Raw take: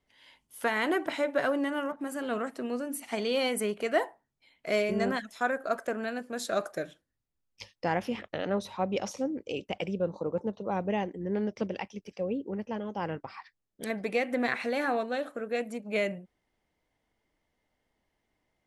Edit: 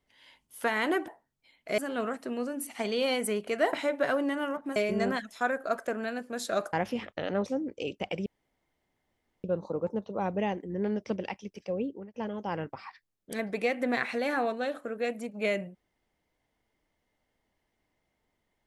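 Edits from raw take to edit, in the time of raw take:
1.08–2.11 swap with 4.06–4.76
6.73–7.89 cut
8.62–9.15 cut
9.95 insert room tone 1.18 s
12.36–12.65 fade out

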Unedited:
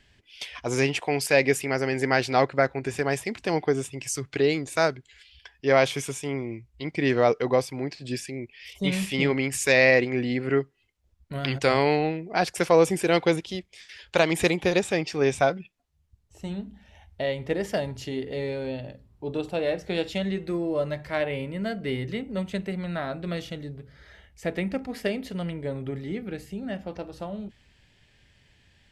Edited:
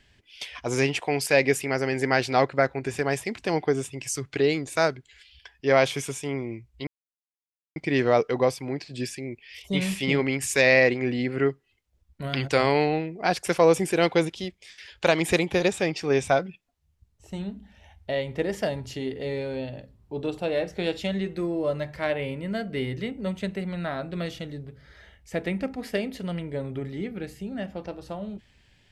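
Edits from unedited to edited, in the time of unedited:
6.87 insert silence 0.89 s

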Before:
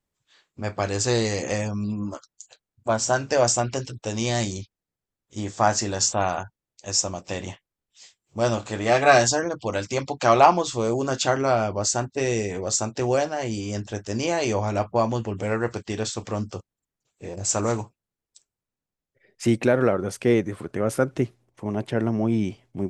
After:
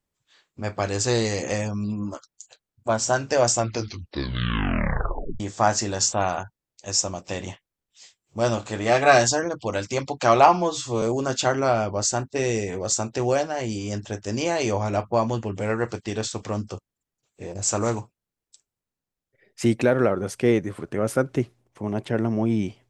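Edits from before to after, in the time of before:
3.54 tape stop 1.86 s
10.48–10.84 stretch 1.5×

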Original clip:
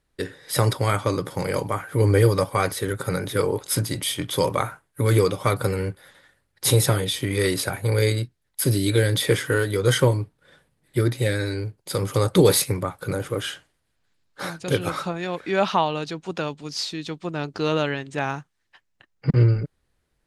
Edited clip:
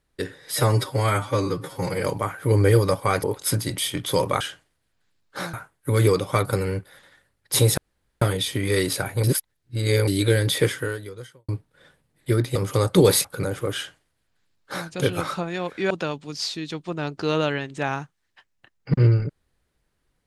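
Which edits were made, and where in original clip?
0.52–1.53 stretch 1.5×
2.73–3.48 cut
6.89 insert room tone 0.44 s
7.91–8.75 reverse
9.29–10.16 fade out quadratic
11.23–11.96 cut
12.65–12.93 cut
13.44–14.57 copy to 4.65
15.59–16.27 cut

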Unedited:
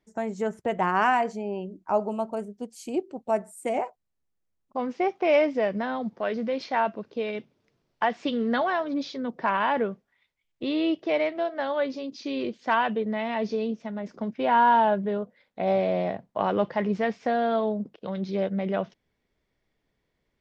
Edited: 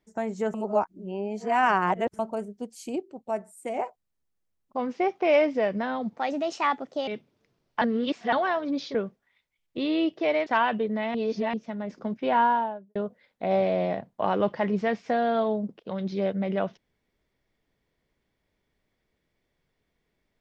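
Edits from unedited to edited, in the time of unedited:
0.54–2.19 reverse
2.96–3.79 gain -4.5 dB
6.17–7.31 speed 126%
8.05–8.56 reverse
9.18–9.8 cut
11.32–12.63 cut
13.31–13.7 reverse
14.43–15.12 studio fade out

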